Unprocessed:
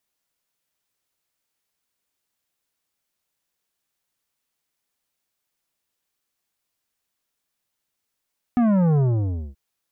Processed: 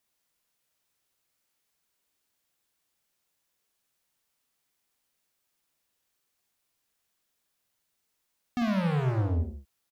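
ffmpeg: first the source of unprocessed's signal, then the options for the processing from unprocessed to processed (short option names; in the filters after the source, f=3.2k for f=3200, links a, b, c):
-f lavfi -i "aevalsrc='0.15*clip((0.98-t)/0.57,0,1)*tanh(3.55*sin(2*PI*250*0.98/log(65/250)*(exp(log(65/250)*t/0.98)-1)))/tanh(3.55)':d=0.98:s=44100"
-af "volume=27.5dB,asoftclip=hard,volume=-27.5dB,aecho=1:1:46.65|105:0.501|0.355"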